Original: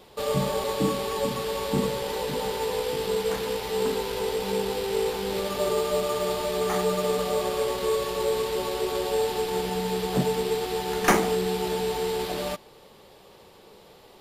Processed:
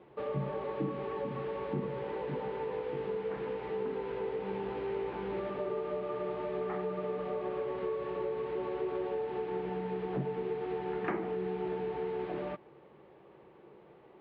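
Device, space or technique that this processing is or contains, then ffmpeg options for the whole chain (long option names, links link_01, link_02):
bass amplifier: -filter_complex "[0:a]asettb=1/sr,asplit=3[link_01][link_02][link_03];[link_01]atrim=end=4.504[link_04];[link_02]atrim=start=4.5:end=5.5,asetpts=PTS-STARTPTS,afade=type=in:duration=0.004:curve=qsin,afade=type=out:start_time=0.996:duration=0.004:curve=qsin,asplit=2[link_05][link_06];[link_06]adelay=17,volume=-4.5dB[link_07];[link_05][link_07]amix=inputs=2:normalize=0,atrim=end_sample=44100[link_08];[link_03]atrim=start=5.496[link_09];[link_04][link_08]acrossfade=duration=0.004:curve1=hsin:curve2=qsin[link_10];[link_10][link_09]acrossfade=duration=0.004:curve1=qsin:curve2=hsin,acompressor=threshold=-27dB:ratio=4,highpass=66,equalizer=frequency=98:width_type=q:width=4:gain=-7,equalizer=frequency=140:width_type=q:width=4:gain=8,equalizer=frequency=340:width_type=q:width=4:gain=9,lowpass=frequency=2300:width=0.5412,lowpass=frequency=2300:width=1.3066,volume=-7dB"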